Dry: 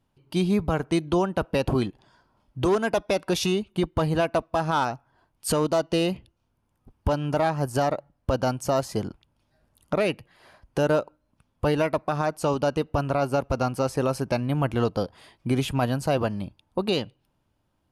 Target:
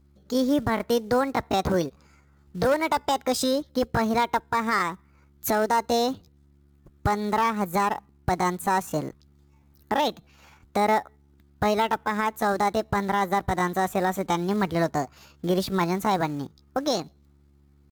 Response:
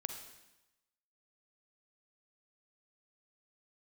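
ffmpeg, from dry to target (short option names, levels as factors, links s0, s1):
-af "aeval=exprs='val(0)+0.00141*(sin(2*PI*50*n/s)+sin(2*PI*2*50*n/s)/2+sin(2*PI*3*50*n/s)/3+sin(2*PI*4*50*n/s)/4+sin(2*PI*5*50*n/s)/5)':c=same,acrusher=bits=6:mode=log:mix=0:aa=0.000001,asetrate=62367,aresample=44100,atempo=0.707107"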